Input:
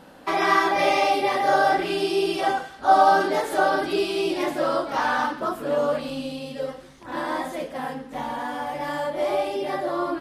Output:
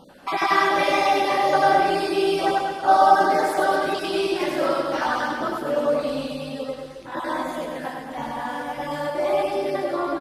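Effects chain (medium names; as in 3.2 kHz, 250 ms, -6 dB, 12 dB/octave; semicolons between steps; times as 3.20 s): random holes in the spectrogram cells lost 24%; on a send: reverse bouncing-ball echo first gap 100 ms, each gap 1.2×, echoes 5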